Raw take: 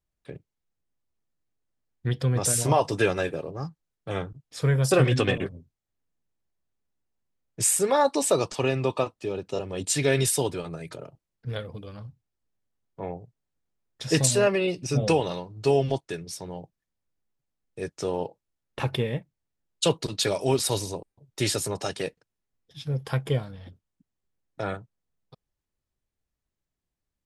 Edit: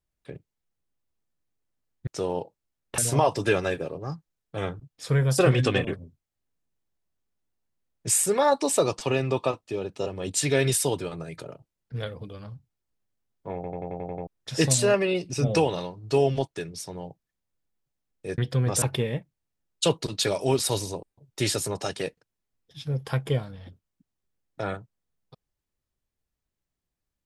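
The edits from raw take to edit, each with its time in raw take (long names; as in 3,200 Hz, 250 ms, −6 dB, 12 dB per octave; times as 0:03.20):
0:02.07–0:02.51: swap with 0:17.91–0:18.82
0:13.08: stutter in place 0.09 s, 8 plays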